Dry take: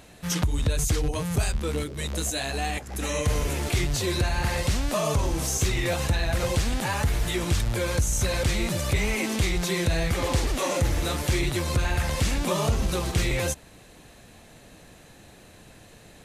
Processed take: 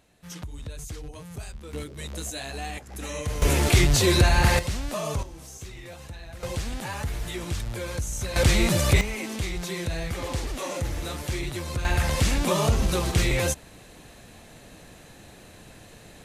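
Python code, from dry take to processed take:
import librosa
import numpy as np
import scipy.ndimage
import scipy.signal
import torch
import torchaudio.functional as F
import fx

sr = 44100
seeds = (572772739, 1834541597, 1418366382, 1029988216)

y = fx.gain(x, sr, db=fx.steps((0.0, -13.0), (1.73, -5.5), (3.42, 6.5), (4.59, -4.5), (5.23, -16.0), (6.43, -6.0), (8.36, 5.0), (9.01, -5.5), (11.85, 2.0)))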